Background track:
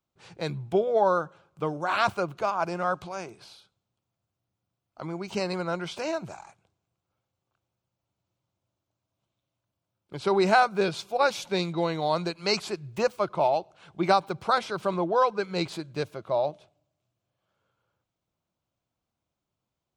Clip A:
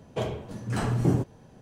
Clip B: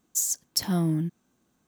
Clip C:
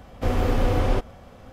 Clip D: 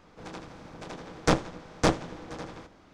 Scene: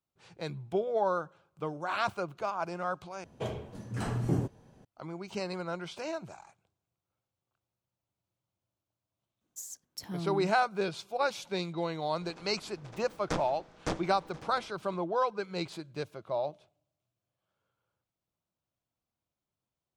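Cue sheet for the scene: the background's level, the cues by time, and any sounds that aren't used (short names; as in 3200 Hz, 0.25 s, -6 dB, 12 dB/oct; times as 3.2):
background track -6.5 dB
3.24 replace with A -6 dB
9.41 add B -12 dB + high shelf 4400 Hz -6.5 dB
12.03 add D -10.5 dB
not used: C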